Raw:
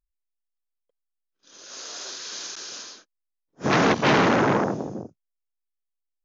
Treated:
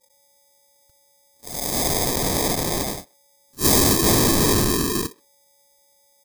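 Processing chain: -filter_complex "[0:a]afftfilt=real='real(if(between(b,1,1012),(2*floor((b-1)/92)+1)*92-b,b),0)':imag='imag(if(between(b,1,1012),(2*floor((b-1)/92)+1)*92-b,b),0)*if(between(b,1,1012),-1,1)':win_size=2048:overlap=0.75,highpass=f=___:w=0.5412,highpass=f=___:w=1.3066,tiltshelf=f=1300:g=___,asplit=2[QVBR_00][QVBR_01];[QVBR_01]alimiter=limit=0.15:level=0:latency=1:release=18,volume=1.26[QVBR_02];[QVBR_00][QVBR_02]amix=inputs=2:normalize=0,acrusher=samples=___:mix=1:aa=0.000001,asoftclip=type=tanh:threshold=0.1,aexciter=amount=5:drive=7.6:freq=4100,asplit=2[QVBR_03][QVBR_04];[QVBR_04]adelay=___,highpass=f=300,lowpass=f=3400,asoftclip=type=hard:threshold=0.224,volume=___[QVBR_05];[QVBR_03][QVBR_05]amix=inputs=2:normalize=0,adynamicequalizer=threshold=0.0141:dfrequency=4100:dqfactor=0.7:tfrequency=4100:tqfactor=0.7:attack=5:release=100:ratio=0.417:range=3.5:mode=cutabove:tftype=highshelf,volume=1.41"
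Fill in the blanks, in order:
1000, 1000, -5, 31, 130, 0.0355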